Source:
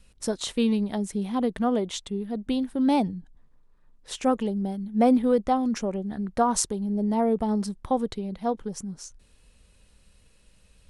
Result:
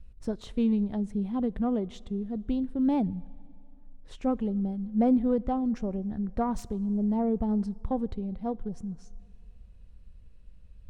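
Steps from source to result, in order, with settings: self-modulated delay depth 0.054 ms; RIAA curve playback; on a send: reverb RT60 2.5 s, pre-delay 19 ms, DRR 23 dB; on the sum: gain -9 dB

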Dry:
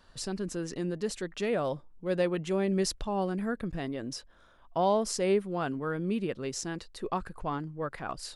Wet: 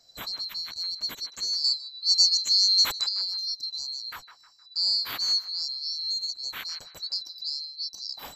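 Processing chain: band-swap scrambler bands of 4000 Hz; 1.64–3.09 bell 6600 Hz +11.5 dB 1.4 oct; narrowing echo 0.155 s, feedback 42%, band-pass 1200 Hz, level -10.5 dB

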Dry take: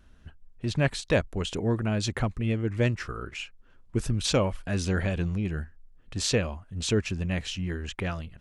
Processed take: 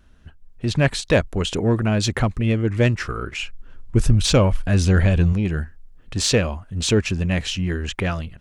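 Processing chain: 3.43–5.33 low shelf 110 Hz +10.5 dB; in parallel at -9 dB: soft clip -27.5 dBFS, distortion -7 dB; on the sum: AGC gain up to 6 dB

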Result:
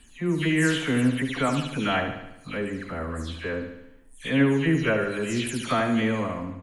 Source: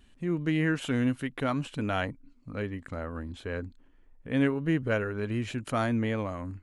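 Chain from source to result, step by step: spectral delay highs early, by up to 0.205 s; high shelf 2700 Hz +8.5 dB; feedback echo 73 ms, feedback 56%, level -8 dB; gain +4 dB

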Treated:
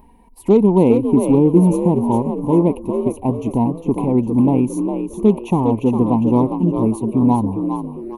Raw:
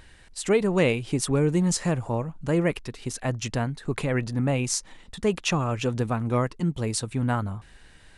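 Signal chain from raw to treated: EQ curve 150 Hz 0 dB, 220 Hz +11 dB, 400 Hz +6 dB, 600 Hz -2 dB, 970 Hz +14 dB, 1400 Hz -28 dB, 2300 Hz -9 dB, 3500 Hz -21 dB, 7600 Hz -21 dB, 13000 Hz +14 dB; added harmonics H 8 -37 dB, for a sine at -8 dBFS; frequency-shifting echo 0.405 s, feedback 38%, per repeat +53 Hz, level -7 dB; envelope flanger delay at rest 5.6 ms, full sweep at -27.5 dBFS; gain +4.5 dB

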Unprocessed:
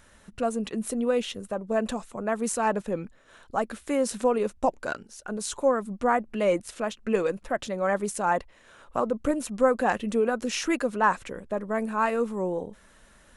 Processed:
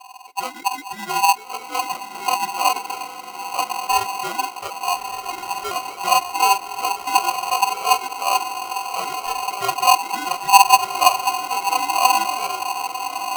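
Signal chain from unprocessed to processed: spectrum mirrored in octaves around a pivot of 510 Hz; in parallel at -8 dB: decimation with a swept rate 13× 3.5 Hz; on the sum: resonant low shelf 180 Hz +11.5 dB, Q 3; fixed phaser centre 2900 Hz, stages 6; on a send: diffused feedback echo 1.32 s, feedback 53%, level -7 dB; on the sum: polarity switched at an audio rate 890 Hz; gain -2.5 dB

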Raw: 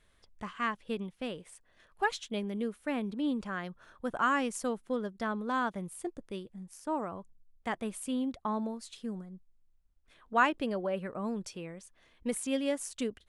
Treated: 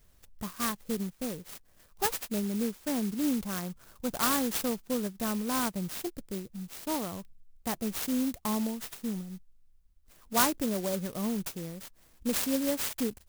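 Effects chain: tone controls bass +7 dB, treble +10 dB; clock jitter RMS 0.12 ms

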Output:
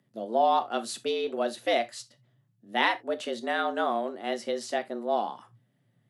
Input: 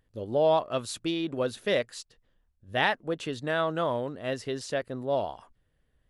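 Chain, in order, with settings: non-linear reverb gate 0.1 s falling, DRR 9.5 dB; frequency shift +110 Hz

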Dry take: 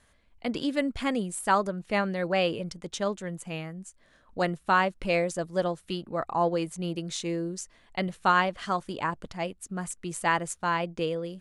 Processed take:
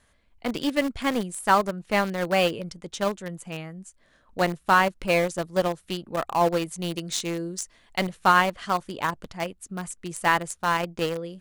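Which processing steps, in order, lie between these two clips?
6.68–8.09 high shelf 2800 Hz +5.5 dB; in parallel at -4 dB: sample gate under -24 dBFS

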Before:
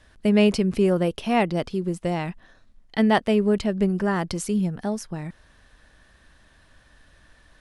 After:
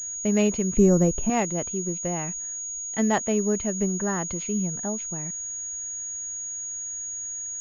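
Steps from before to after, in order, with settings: 0.77–1.3 tilt -3.5 dB/oct; pulse-width modulation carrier 6700 Hz; gain -4 dB

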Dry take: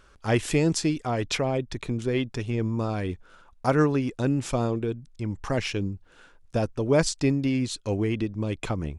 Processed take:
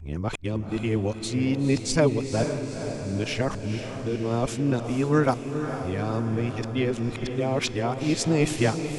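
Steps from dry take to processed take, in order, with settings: whole clip reversed; diffused feedback echo 0.479 s, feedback 61%, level -8 dB

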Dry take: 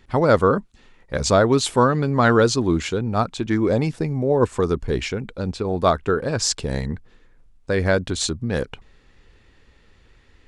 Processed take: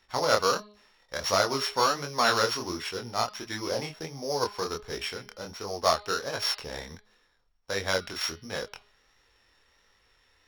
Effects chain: sample sorter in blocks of 8 samples; three-band isolator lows -16 dB, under 580 Hz, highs -13 dB, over 7100 Hz; de-hum 208 Hz, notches 23; chorus 1.4 Hz, delay 19.5 ms, depth 7.8 ms

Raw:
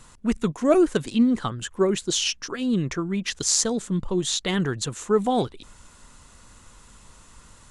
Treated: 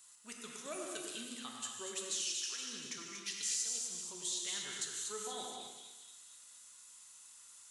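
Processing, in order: differentiator; compressor 3:1, threshold -34 dBFS, peak gain reduction 11.5 dB; hard clip -18.5 dBFS, distortion -37 dB; on a send: split-band echo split 2300 Hz, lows 0.102 s, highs 0.237 s, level -7 dB; on the sum: non-linear reverb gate 0.29 s flat, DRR 0 dB; gain -5 dB

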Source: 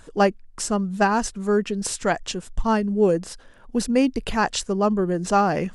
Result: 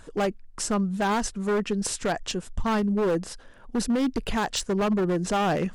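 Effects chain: high shelf 3500 Hz -2.5 dB; limiter -15 dBFS, peak gain reduction 7.5 dB; wavefolder -18.5 dBFS

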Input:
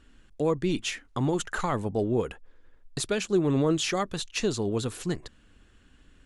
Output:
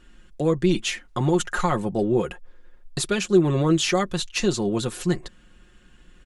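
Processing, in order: comb 5.6 ms, depth 62%; gain +3.5 dB

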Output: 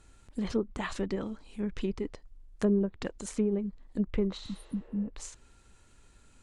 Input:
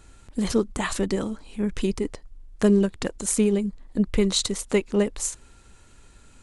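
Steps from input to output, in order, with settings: treble ducked by the level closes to 940 Hz, closed at -16 dBFS; spectral repair 4.44–5.06, 320–8800 Hz both; gain -7.5 dB

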